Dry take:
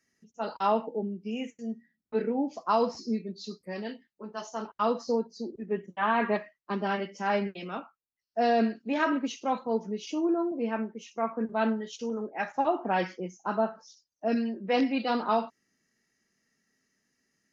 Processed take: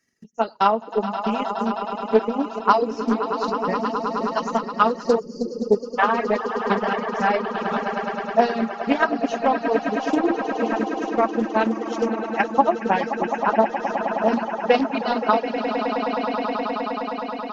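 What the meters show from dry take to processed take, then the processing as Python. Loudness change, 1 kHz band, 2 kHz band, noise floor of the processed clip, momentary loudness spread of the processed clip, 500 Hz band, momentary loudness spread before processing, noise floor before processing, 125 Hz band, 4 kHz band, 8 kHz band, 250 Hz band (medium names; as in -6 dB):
+7.5 dB, +10.0 dB, +9.0 dB, -36 dBFS, 6 LU, +8.5 dB, 12 LU, -85 dBFS, +6.0 dB, +7.0 dB, no reading, +6.5 dB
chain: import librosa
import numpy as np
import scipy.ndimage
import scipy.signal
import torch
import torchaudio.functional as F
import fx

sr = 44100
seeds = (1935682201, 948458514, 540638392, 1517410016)

p1 = fx.transient(x, sr, attack_db=11, sustain_db=-2)
p2 = fx.echo_swell(p1, sr, ms=105, loudest=8, wet_db=-11.0)
p3 = fx.spec_box(p2, sr, start_s=5.19, length_s=0.79, low_hz=580.0, high_hz=4300.0, gain_db=-23)
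p4 = fx.rider(p3, sr, range_db=4, speed_s=0.5)
p5 = p3 + (p4 * 10.0 ** (-1.0 / 20.0))
p6 = fx.dereverb_blind(p5, sr, rt60_s=1.4)
p7 = fx.doppler_dist(p6, sr, depth_ms=0.18)
y = p7 * 10.0 ** (-2.5 / 20.0)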